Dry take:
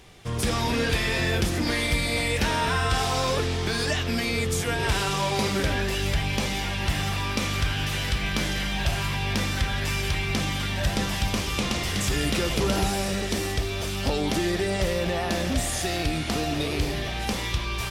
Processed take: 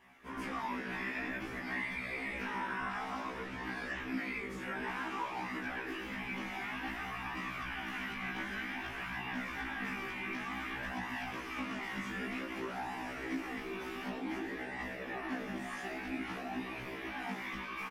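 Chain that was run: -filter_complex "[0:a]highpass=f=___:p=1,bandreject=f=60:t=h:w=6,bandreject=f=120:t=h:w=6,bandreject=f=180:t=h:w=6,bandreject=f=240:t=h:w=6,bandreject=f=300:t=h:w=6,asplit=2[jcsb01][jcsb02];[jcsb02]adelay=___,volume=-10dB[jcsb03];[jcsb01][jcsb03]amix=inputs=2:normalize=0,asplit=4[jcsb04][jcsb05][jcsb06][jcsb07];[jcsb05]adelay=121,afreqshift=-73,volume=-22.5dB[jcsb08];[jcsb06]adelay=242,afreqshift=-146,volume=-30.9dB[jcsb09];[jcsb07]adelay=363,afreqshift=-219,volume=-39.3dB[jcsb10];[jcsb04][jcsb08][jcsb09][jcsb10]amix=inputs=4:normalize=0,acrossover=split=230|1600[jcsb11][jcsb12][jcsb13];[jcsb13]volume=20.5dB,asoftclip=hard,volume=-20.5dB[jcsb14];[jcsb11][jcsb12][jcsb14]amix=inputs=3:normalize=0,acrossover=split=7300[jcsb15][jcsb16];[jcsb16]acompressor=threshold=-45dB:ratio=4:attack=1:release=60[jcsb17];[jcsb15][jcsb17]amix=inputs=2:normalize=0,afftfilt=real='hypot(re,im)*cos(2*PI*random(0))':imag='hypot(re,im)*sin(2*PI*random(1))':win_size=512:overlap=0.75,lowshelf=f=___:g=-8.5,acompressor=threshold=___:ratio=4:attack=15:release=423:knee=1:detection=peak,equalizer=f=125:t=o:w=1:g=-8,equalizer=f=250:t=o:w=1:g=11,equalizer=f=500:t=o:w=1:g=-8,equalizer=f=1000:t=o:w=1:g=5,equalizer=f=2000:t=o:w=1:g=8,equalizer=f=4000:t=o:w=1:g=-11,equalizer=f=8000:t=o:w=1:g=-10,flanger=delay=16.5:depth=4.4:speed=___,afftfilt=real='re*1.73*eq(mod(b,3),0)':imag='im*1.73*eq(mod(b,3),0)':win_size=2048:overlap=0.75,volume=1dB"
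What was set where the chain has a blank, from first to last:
99, 23, 140, -34dB, 0.54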